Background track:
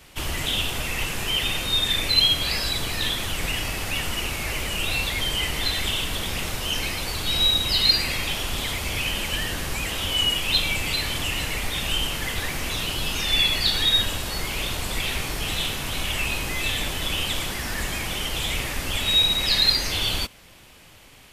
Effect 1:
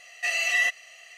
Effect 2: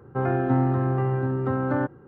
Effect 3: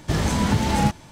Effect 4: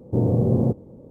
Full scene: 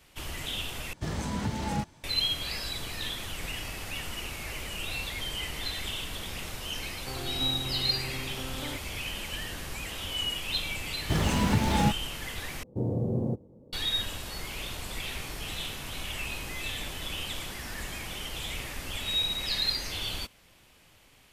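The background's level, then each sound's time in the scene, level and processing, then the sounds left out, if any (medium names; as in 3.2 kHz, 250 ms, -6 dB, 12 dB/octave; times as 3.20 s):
background track -9.5 dB
0.93 s: replace with 3 -11 dB
6.91 s: add 2 -16 dB
11.01 s: add 3 -4.5 dB + hysteresis with a dead band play -36 dBFS
12.63 s: replace with 4 -9.5 dB
not used: 1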